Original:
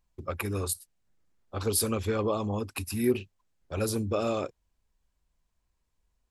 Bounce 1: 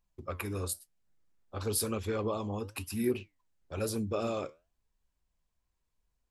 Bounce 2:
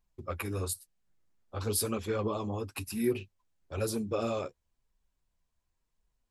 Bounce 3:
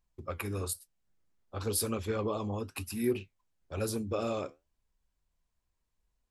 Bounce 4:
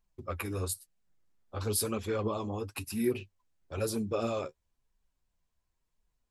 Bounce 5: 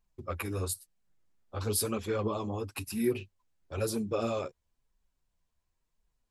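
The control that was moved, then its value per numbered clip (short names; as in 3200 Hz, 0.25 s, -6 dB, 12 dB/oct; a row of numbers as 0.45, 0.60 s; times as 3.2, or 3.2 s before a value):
flange, regen: +76, -19, -69, +26, +3%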